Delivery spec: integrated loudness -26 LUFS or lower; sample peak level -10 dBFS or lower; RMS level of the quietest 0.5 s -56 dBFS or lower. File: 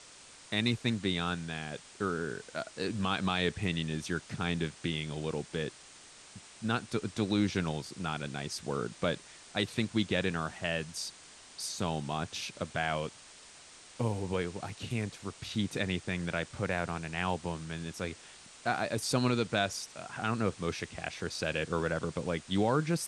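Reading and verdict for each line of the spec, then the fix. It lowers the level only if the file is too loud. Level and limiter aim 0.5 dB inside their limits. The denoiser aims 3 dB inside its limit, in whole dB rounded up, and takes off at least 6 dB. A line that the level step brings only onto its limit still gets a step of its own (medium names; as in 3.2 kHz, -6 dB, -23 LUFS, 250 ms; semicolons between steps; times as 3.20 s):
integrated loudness -34.0 LUFS: pass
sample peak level -14.5 dBFS: pass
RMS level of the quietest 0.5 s -54 dBFS: fail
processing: noise reduction 6 dB, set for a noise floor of -54 dBFS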